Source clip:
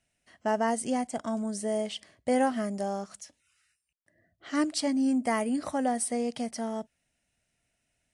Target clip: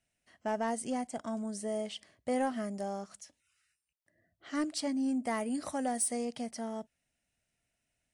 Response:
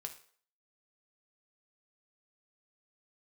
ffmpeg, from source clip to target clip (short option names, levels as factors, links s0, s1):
-filter_complex "[0:a]asettb=1/sr,asplit=3[s0][s1][s2];[s0]atrim=end=5.504[s3];[s1]atrim=start=5.5:end=6.25,asetpts=PTS-STARTPTS,afade=t=in:d=0.004:c=qsin,afade=t=out:st=0.746:d=0.004:c=qsin,highshelf=f=4800:g=8.5[s4];[s2]atrim=start=6.246[s5];[s3][s4]acrossfade=d=0.004:c1=hsin:c2=qsin[s6];[s6][s5]acrossfade=d=0.004:c1=qsin:c2=hsin,asoftclip=type=tanh:threshold=0.141,volume=0.562"